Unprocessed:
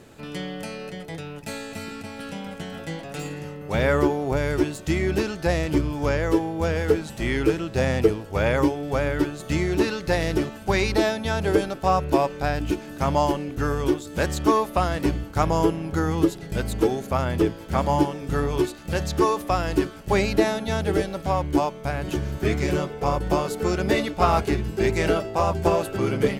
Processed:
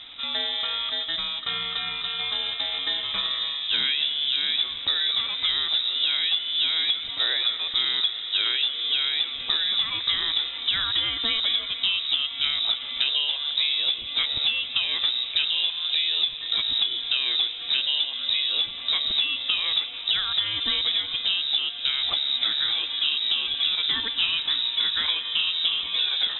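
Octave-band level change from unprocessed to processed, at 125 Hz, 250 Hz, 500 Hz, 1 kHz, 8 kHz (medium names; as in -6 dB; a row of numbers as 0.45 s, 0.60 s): under -25 dB, -25.5 dB, -24.5 dB, -14.0 dB, under -40 dB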